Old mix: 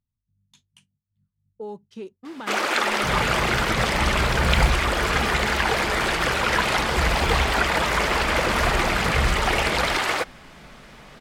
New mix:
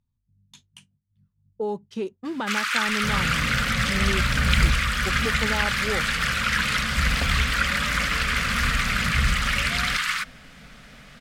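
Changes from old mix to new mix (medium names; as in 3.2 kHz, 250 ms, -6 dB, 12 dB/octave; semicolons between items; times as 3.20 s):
speech +7.0 dB; first sound: add steep high-pass 1.2 kHz 48 dB/octave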